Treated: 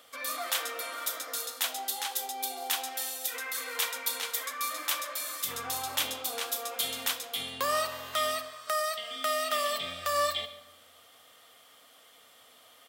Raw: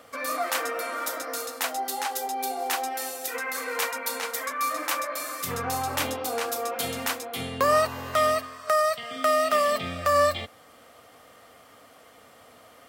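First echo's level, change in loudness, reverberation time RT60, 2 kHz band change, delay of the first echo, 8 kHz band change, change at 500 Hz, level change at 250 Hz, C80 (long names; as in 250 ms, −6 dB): −19.5 dB, −4.5 dB, 1.1 s, −5.0 dB, 142 ms, −0.5 dB, −9.5 dB, −12.5 dB, 13.5 dB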